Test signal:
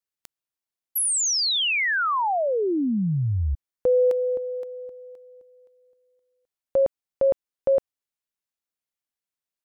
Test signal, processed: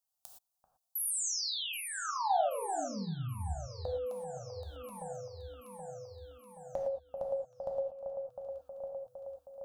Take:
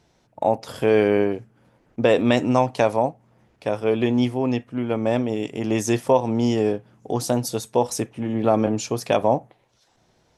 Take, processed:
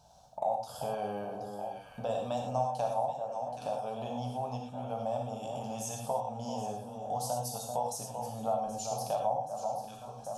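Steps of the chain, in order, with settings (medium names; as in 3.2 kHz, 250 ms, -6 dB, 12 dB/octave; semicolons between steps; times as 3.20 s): treble shelf 4.6 kHz +7 dB; static phaser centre 830 Hz, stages 4; echo whose repeats swap between lows and highs 388 ms, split 1.5 kHz, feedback 72%, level -12 dB; compression 2.5:1, threshold -44 dBFS; peaking EQ 730 Hz +12.5 dB 0.42 oct; gated-style reverb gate 140 ms flat, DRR 0.5 dB; trim -2 dB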